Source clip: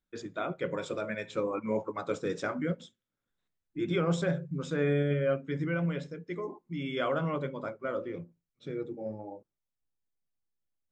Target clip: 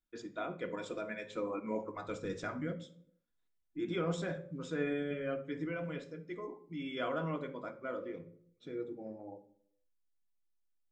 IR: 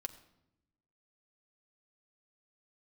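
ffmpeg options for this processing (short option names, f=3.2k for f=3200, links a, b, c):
-filter_complex "[0:a]asplit=3[a][b][c];[a]afade=t=out:st=1.84:d=0.02[d];[b]asubboost=boost=6:cutoff=140,afade=t=in:st=1.84:d=0.02,afade=t=out:st=2.67:d=0.02[e];[c]afade=t=in:st=2.67:d=0.02[f];[d][e][f]amix=inputs=3:normalize=0[g];[1:a]atrim=start_sample=2205,asetrate=74970,aresample=44100[h];[g][h]afir=irnorm=-1:irlink=0,volume=1.5dB"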